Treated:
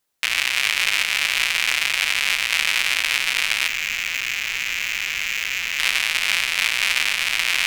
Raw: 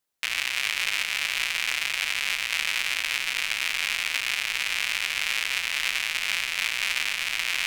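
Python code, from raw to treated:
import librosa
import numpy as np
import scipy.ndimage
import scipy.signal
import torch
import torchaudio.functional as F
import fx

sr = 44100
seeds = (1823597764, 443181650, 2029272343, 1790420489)

y = fx.clip_hard(x, sr, threshold_db=-21.0, at=(3.67, 5.79))
y = y * 10.0 ** (6.5 / 20.0)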